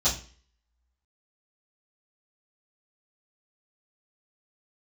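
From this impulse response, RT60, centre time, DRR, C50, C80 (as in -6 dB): 0.40 s, 24 ms, -14.5 dB, 9.5 dB, 15.0 dB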